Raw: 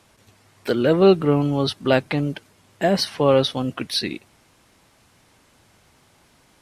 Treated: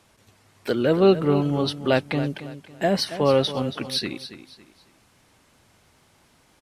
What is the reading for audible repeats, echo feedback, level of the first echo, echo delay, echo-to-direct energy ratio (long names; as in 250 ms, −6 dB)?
3, 31%, −12.5 dB, 278 ms, −12.0 dB